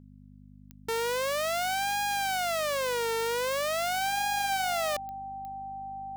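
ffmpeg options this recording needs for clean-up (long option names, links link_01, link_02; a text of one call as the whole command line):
ffmpeg -i in.wav -af "adeclick=threshold=4,bandreject=frequency=50.2:width_type=h:width=4,bandreject=frequency=100.4:width_type=h:width=4,bandreject=frequency=150.6:width_type=h:width=4,bandreject=frequency=200.8:width_type=h:width=4,bandreject=frequency=251:width_type=h:width=4,bandreject=frequency=780:width=30" out.wav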